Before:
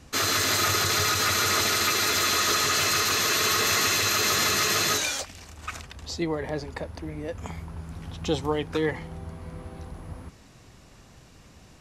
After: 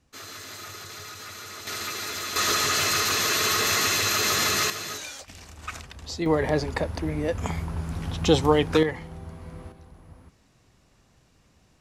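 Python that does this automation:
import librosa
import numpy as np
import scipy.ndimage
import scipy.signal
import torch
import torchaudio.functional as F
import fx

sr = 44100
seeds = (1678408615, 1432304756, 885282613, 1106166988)

y = fx.gain(x, sr, db=fx.steps((0.0, -16.5), (1.67, -8.5), (2.36, 0.0), (4.7, -10.0), (5.28, -0.5), (6.26, 7.0), (8.83, -1.5), (9.72, -9.5)))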